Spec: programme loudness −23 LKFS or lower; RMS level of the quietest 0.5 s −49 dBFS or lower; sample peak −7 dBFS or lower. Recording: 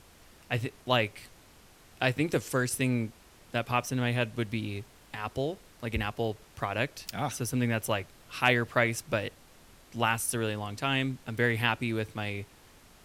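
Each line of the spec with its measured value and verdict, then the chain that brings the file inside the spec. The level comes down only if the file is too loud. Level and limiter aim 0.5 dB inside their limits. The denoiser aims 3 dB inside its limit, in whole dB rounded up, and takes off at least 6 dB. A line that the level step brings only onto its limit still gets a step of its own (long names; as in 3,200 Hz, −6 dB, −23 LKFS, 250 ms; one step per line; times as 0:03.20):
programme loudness −30.5 LKFS: in spec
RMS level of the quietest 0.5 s −56 dBFS: in spec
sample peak −8.5 dBFS: in spec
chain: no processing needed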